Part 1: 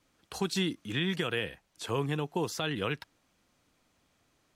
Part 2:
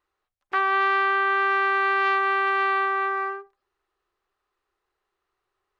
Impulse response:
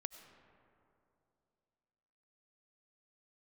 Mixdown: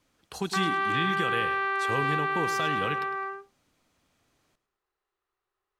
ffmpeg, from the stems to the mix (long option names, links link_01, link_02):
-filter_complex "[0:a]volume=0dB,asplit=2[link_01][link_02];[link_02]volume=-14.5dB[link_03];[1:a]volume=-6dB[link_04];[link_03]aecho=0:1:105|210|315|420|525:1|0.39|0.152|0.0593|0.0231[link_05];[link_01][link_04][link_05]amix=inputs=3:normalize=0"